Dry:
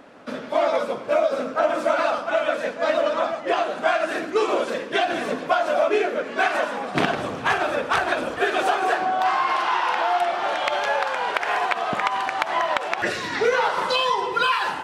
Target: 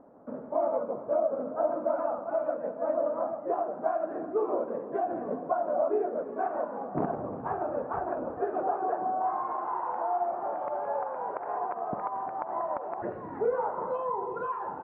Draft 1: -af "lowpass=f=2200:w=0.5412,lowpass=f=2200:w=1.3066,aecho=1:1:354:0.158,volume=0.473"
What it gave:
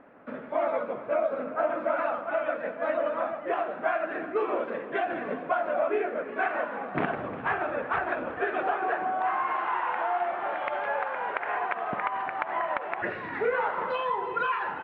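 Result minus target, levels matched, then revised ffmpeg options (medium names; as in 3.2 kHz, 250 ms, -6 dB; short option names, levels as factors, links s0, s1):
2 kHz band +15.0 dB
-af "lowpass=f=970:w=0.5412,lowpass=f=970:w=1.3066,aecho=1:1:354:0.158,volume=0.473"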